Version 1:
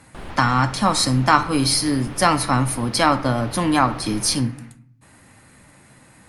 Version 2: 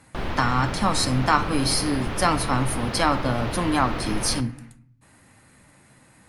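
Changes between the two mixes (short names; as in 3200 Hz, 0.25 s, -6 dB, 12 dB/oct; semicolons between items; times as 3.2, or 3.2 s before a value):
speech -4.5 dB; background +7.0 dB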